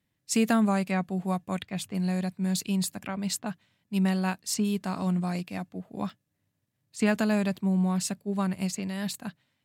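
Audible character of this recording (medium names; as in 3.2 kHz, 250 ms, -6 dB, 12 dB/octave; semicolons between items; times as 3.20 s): noise floor -79 dBFS; spectral tilt -5.0 dB/octave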